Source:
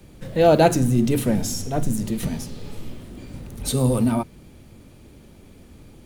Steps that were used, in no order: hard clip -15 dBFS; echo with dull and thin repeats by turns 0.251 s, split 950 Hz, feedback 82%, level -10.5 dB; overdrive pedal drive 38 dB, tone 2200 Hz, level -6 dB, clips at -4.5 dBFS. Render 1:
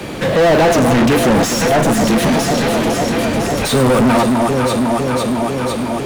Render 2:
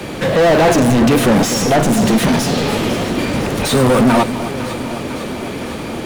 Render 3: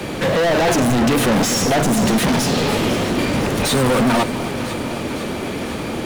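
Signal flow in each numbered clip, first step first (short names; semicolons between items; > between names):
hard clip > echo with dull and thin repeats by turns > overdrive pedal; hard clip > overdrive pedal > echo with dull and thin repeats by turns; overdrive pedal > hard clip > echo with dull and thin repeats by turns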